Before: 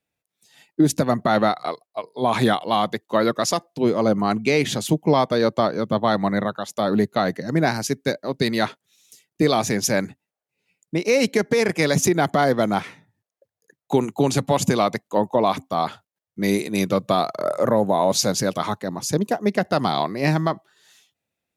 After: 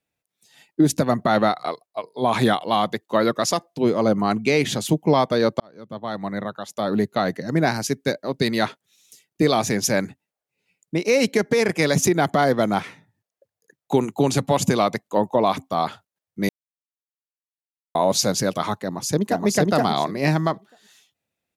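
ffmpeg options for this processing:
-filter_complex "[0:a]asplit=2[a][b];[b]afade=t=in:st=18.78:d=0.01,afade=t=out:st=19.45:d=0.01,aecho=0:1:470|940|1410:1|0.15|0.0225[c];[a][c]amix=inputs=2:normalize=0,asplit=4[d][e][f][g];[d]atrim=end=5.6,asetpts=PTS-STARTPTS,afade=t=out:st=5.596:d=0.004:c=hsin[h];[e]atrim=start=5.6:end=16.49,asetpts=PTS-STARTPTS,afade=t=in:d=2.28:c=qsin,afade=t=out:st=10.886:d=0.004:c=hsin[i];[f]atrim=start=16.49:end=17.95,asetpts=PTS-STARTPTS,volume=0[j];[g]atrim=start=17.95,asetpts=PTS-STARTPTS,afade=t=in:d=0.004:c=hsin[k];[h][i][j][k]concat=n=4:v=0:a=1"

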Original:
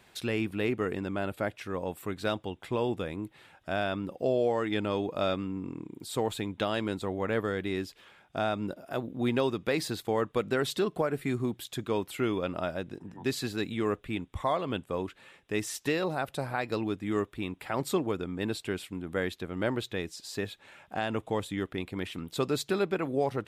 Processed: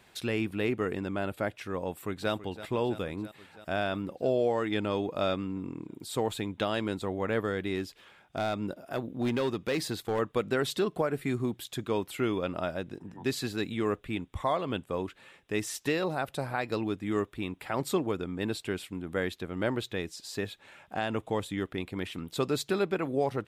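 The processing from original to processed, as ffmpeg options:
-filter_complex "[0:a]asplit=2[a][b];[b]afade=t=in:st=1.89:d=0.01,afade=t=out:st=2.32:d=0.01,aecho=0:1:330|660|990|1320|1650|1980|2310|2640|2970|3300|3630:0.199526|0.149645|0.112234|0.0841751|0.0631313|0.0473485|0.0355114|0.0266335|0.0199752|0.0149814|0.011236[c];[a][c]amix=inputs=2:normalize=0,asettb=1/sr,asplit=3[d][e][f];[d]atrim=end=7.754[g];[e]atrim=start=7.75:end=10.19,asetpts=PTS-STARTPTS,afade=t=in:d=0.004:c=qsin,afade=t=out:st=2.436:d=0.004:c=qsin,asoftclip=type=hard:threshold=-24dB[h];[f]atrim=start=10.186[i];[g][h]acrossfade=d=0.004:c1=hsin:c2=qsin[j];[j][i]acrossfade=d=0.004:c1=qsin:c2=hsin"

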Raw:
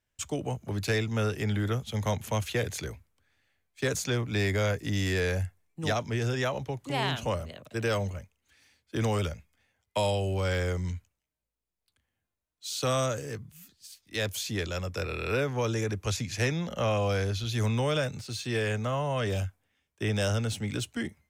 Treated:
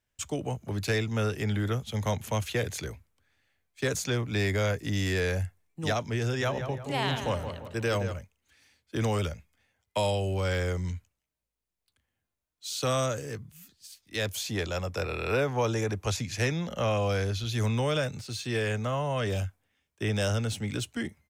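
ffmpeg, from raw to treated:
-filter_complex "[0:a]asplit=3[a][b][c];[a]afade=t=out:st=6.4:d=0.02[d];[b]asplit=2[e][f];[f]adelay=171,lowpass=f=2.4k:p=1,volume=-8dB,asplit=2[g][h];[h]adelay=171,lowpass=f=2.4k:p=1,volume=0.45,asplit=2[i][j];[j]adelay=171,lowpass=f=2.4k:p=1,volume=0.45,asplit=2[k][l];[l]adelay=171,lowpass=f=2.4k:p=1,volume=0.45,asplit=2[m][n];[n]adelay=171,lowpass=f=2.4k:p=1,volume=0.45[o];[e][g][i][k][m][o]amix=inputs=6:normalize=0,afade=t=in:st=6.4:d=0.02,afade=t=out:st=8.12:d=0.02[p];[c]afade=t=in:st=8.12:d=0.02[q];[d][p][q]amix=inputs=3:normalize=0,asettb=1/sr,asplit=3[r][s][t];[r]atrim=end=14.374[u];[s]atrim=start=14.37:end=16.2,asetpts=PTS-STARTPTS,afade=t=in:d=0.004:c=qsin,afade=t=out:st=1.826:d=0.004:c=qsin,equalizer=f=780:w=1.5:g=6[v];[t]atrim=start=16.196[w];[u][v]acrossfade=d=0.004:c1=hsin:c2=qsin[x];[x][w]acrossfade=d=0.004:c1=qsin:c2=hsin"

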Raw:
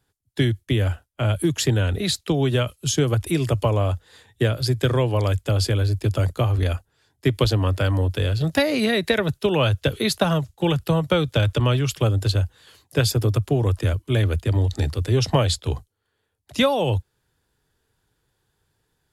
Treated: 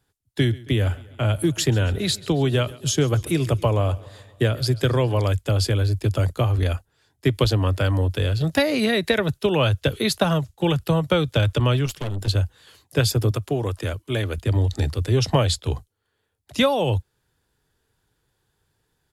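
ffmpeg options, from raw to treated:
-filter_complex "[0:a]asplit=3[a][b][c];[a]afade=t=out:st=0.46:d=0.02[d];[b]aecho=1:1:136|272|408|544|680:0.0891|0.0517|0.03|0.0174|0.0101,afade=t=in:st=0.46:d=0.02,afade=t=out:st=5.23:d=0.02[e];[c]afade=t=in:st=5.23:d=0.02[f];[d][e][f]amix=inputs=3:normalize=0,asettb=1/sr,asplit=3[g][h][i];[g]atrim=end=11.864[j];[h]atrim=start=11.86:end=12.28,asetpts=PTS-STARTPTS,afade=t=in:d=0.004:c=qsin,afade=t=out:st=0.416:d=0.004:c=qsin,aeval=exprs='(tanh(17.8*val(0)+0.6)-tanh(0.6))/17.8':c=same[k];[i]atrim=start=12.276[l];[j][k]acrossfade=d=0.004:c1=hsin:c2=qsin[m];[m][l]acrossfade=d=0.004:c1=qsin:c2=hsin,asettb=1/sr,asplit=3[n][o][p];[n]atrim=end=13.314[q];[o]atrim=start=13.31:end=14.38,asetpts=PTS-STARTPTS,afade=t=in:d=0.004:c=qsin,afade=t=out:st=1.066:d=0.004:c=qsin,lowshelf=f=180:g=-9[r];[p]atrim=start=14.376[s];[q][r]acrossfade=d=0.004:c1=hsin:c2=qsin[t];[t][s]acrossfade=d=0.004:c1=qsin:c2=hsin"

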